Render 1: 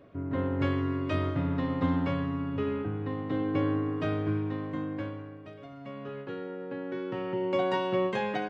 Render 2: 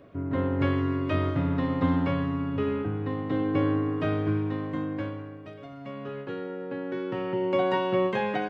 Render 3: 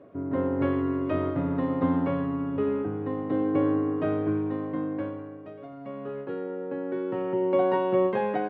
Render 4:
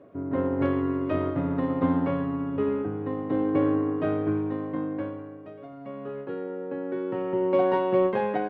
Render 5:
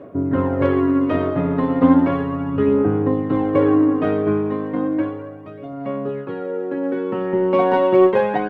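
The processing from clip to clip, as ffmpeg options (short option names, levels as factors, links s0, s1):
-filter_complex "[0:a]acrossover=split=3800[s0][s1];[s1]acompressor=threshold=0.00112:ratio=4:attack=1:release=60[s2];[s0][s2]amix=inputs=2:normalize=0,volume=1.41"
-af "bandpass=f=470:t=q:w=0.59:csg=0,volume=1.33"
-af "aeval=exprs='0.237*(cos(1*acos(clip(val(0)/0.237,-1,1)))-cos(1*PI/2))+0.00531*(cos(7*acos(clip(val(0)/0.237,-1,1)))-cos(7*PI/2))':c=same,volume=1.12"
-af "aphaser=in_gain=1:out_gain=1:delay=4.8:decay=0.46:speed=0.34:type=sinusoidal,volume=2.37"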